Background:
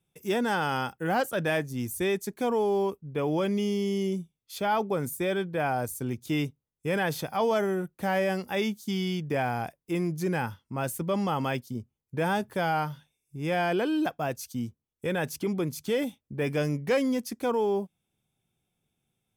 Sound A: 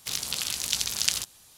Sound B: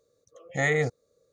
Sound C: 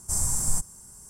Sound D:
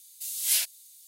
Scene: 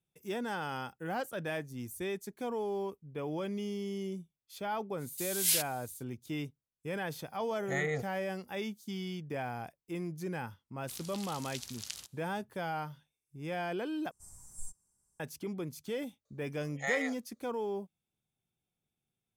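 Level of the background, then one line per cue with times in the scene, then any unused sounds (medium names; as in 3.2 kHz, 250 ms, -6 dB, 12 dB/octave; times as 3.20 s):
background -9.5 dB
4.97 s: add D -3.5 dB, fades 0.05 s
7.13 s: add B -9 dB
10.82 s: add A -17 dB
14.11 s: replace with C -15.5 dB + spectral noise reduction 13 dB
16.25 s: add B -6.5 dB + high-pass 660 Hz 24 dB/octave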